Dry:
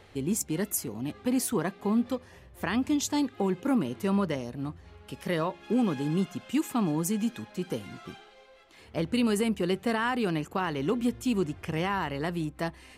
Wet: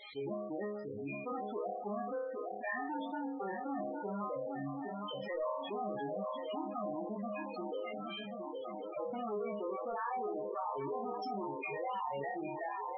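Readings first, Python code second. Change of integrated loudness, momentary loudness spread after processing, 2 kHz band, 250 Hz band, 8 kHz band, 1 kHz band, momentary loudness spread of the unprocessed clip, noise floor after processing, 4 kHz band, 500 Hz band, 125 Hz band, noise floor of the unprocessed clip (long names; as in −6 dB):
−10.0 dB, 4 LU, −9.0 dB, −14.5 dB, below −40 dB, −3.0 dB, 9 LU, −44 dBFS, −12.5 dB, −5.5 dB, −17.0 dB, −54 dBFS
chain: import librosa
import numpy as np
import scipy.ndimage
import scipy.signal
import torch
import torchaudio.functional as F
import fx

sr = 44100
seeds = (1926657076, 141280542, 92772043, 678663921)

y = fx.bin_expand(x, sr, power=2.0)
y = np.clip(y, -10.0 ** (-34.0 / 20.0), 10.0 ** (-34.0 / 20.0))
y = fx.high_shelf(y, sr, hz=2800.0, db=7.5)
y = fx.env_lowpass_down(y, sr, base_hz=1100.0, full_db=-35.0)
y = scipy.signal.sosfilt(scipy.signal.butter(2, 500.0, 'highpass', fs=sr, output='sos'), y)
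y = fx.doubler(y, sr, ms=21.0, db=-6.0)
y = fx.echo_swing(y, sr, ms=1083, ratio=3, feedback_pct=38, wet_db=-13.0)
y = 10.0 ** (-38.5 / 20.0) * np.tanh(y / 10.0 ** (-38.5 / 20.0))
y = fx.high_shelf(y, sr, hz=11000.0, db=-9.5)
y = fx.resonator_bank(y, sr, root=37, chord='fifth', decay_s=0.5)
y = fx.spec_topn(y, sr, count=16)
y = fx.env_flatten(y, sr, amount_pct=70)
y = y * 10.0 ** (14.0 / 20.0)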